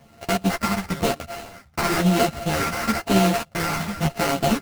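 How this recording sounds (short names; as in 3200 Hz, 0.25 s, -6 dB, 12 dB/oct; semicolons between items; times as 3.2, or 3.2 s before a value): a buzz of ramps at a fixed pitch in blocks of 64 samples; phasing stages 12, 0.99 Hz, lowest notch 500–3300 Hz; aliases and images of a low sample rate 3500 Hz, jitter 20%; a shimmering, thickened sound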